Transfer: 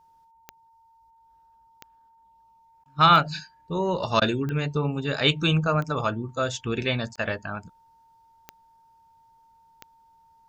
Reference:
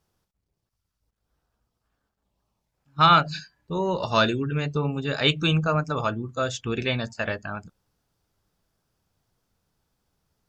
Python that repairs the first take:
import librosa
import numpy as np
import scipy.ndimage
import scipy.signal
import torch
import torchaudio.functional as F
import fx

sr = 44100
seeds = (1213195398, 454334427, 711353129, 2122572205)

y = fx.fix_declick_ar(x, sr, threshold=10.0)
y = fx.notch(y, sr, hz=910.0, q=30.0)
y = fx.fix_interpolate(y, sr, at_s=(2.84, 4.2, 7.16), length_ms=15.0)